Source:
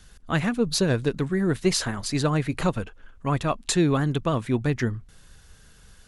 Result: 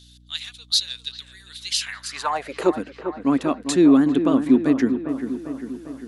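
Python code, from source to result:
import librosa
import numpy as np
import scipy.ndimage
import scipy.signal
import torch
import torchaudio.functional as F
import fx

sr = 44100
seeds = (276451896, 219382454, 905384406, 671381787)

y = fx.filter_sweep_highpass(x, sr, from_hz=3700.0, to_hz=270.0, start_s=1.67, end_s=2.8, q=5.8)
y = fx.echo_wet_lowpass(y, sr, ms=399, feedback_pct=59, hz=1900.0, wet_db=-9)
y = fx.add_hum(y, sr, base_hz=60, snr_db=30)
y = y * librosa.db_to_amplitude(-1.5)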